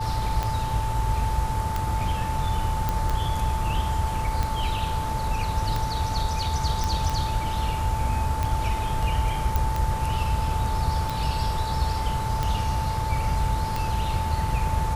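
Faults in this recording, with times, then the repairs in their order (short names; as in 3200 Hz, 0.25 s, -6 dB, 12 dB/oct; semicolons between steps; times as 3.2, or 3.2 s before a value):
tick 45 rpm -13 dBFS
tone 880 Hz -29 dBFS
2.89 pop
6.84 pop
9.56 pop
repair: de-click; notch 880 Hz, Q 30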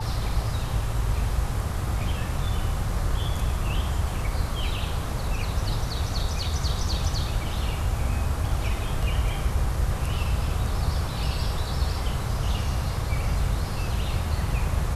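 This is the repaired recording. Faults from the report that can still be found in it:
none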